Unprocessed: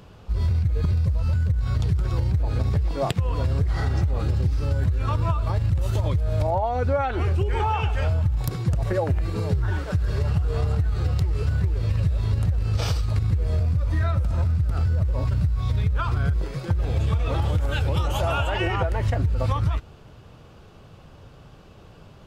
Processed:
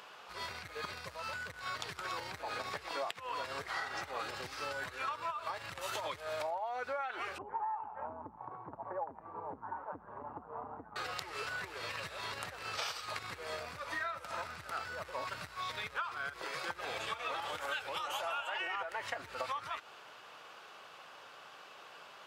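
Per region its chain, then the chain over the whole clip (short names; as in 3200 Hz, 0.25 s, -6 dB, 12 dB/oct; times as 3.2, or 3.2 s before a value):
7.38–10.96 ladder low-pass 1000 Hz, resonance 70% + bell 94 Hz +10 dB 2.3 oct + core saturation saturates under 160 Hz
whole clip: HPF 1300 Hz 12 dB/oct; high shelf 2300 Hz -10 dB; compressor 10:1, threshold -45 dBFS; gain +10 dB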